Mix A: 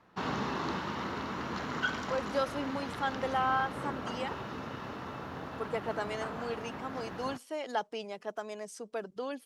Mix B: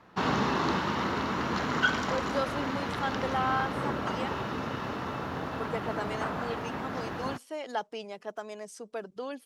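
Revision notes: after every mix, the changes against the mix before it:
background +6.5 dB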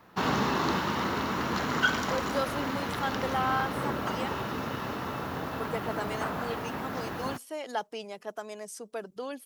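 master: remove air absorption 51 m

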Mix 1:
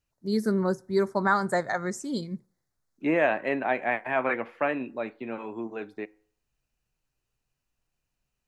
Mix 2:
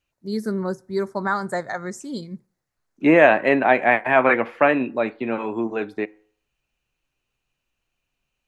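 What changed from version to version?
second voice +10.0 dB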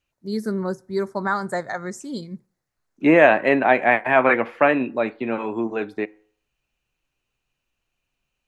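none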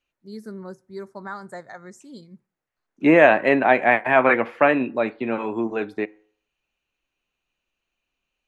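first voice -11.0 dB

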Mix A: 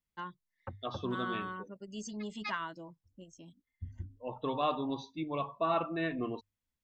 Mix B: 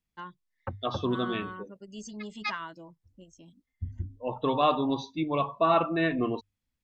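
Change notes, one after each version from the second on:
second voice +7.5 dB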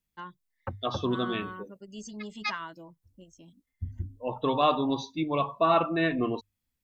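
second voice: remove air absorption 66 m

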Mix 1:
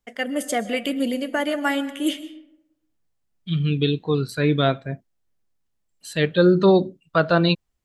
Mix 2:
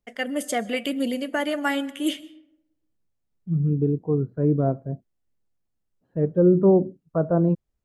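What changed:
first voice: send -7.0 dB; second voice: add Bessel low-pass 570 Hz, order 4

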